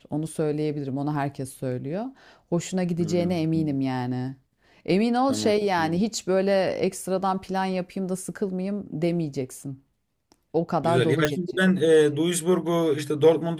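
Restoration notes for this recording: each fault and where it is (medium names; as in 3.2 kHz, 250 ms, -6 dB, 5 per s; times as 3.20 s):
11.25 s: pop -6 dBFS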